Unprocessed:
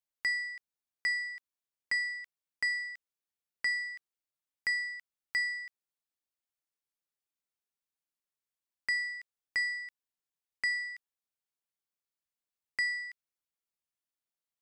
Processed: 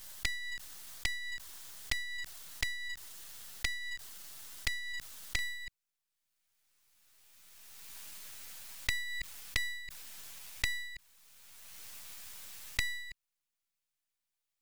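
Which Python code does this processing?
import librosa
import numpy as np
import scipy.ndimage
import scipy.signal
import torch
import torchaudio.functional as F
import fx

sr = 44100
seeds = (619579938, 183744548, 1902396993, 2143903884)

y = fx.peak_eq(x, sr, hz=2400.0, db=fx.steps((0.0, -12.5), (5.39, 2.0)), octaves=0.22)
y = fx.env_flanger(y, sr, rest_ms=10.4, full_db=-35.0)
y = np.maximum(y, 0.0)
y = fx.peak_eq(y, sr, hz=410.0, db=-7.5, octaves=2.7)
y = fx.pre_swell(y, sr, db_per_s=21.0)
y = F.gain(torch.from_numpy(y), 11.5).numpy()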